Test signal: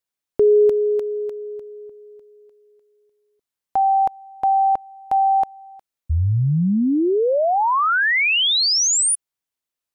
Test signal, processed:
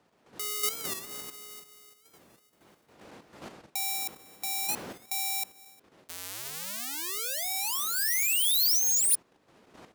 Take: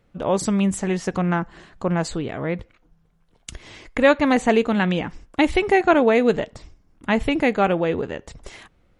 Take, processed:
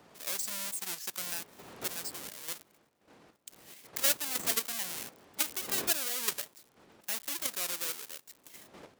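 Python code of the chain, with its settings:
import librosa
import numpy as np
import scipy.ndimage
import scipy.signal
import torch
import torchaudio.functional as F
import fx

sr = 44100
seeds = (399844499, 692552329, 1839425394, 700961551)

y = fx.halfwave_hold(x, sr)
y = fx.dmg_wind(y, sr, seeds[0], corner_hz=290.0, level_db=-17.0)
y = fx.level_steps(y, sr, step_db=9)
y = np.diff(y, prepend=0.0)
y = fx.record_warp(y, sr, rpm=45.0, depth_cents=160.0)
y = y * librosa.db_to_amplitude(-4.5)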